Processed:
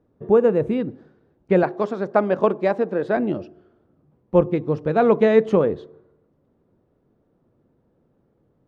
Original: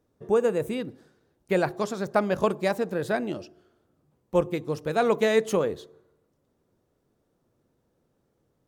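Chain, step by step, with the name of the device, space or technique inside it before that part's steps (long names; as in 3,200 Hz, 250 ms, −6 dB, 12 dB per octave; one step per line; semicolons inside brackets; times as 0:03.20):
0:01.63–0:03.17: high-pass filter 260 Hz 12 dB per octave
phone in a pocket (low-pass filter 3,600 Hz 12 dB per octave; parametric band 210 Hz +3 dB 1.7 octaves; high-shelf EQ 2,100 Hz −11 dB)
level +6 dB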